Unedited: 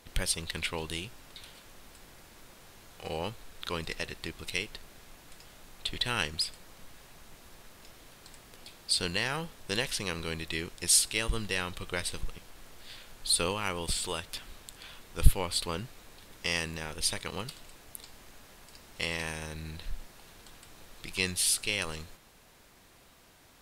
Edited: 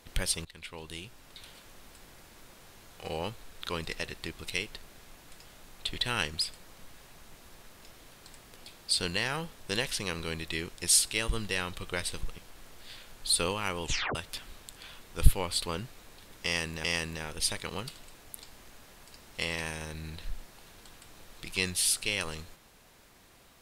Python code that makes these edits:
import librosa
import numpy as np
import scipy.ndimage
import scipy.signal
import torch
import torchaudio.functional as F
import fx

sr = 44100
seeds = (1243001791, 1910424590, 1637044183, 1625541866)

y = fx.edit(x, sr, fx.fade_in_from(start_s=0.45, length_s=1.08, floor_db=-18.0),
    fx.tape_stop(start_s=13.83, length_s=0.32),
    fx.repeat(start_s=16.45, length_s=0.39, count=2), tone=tone)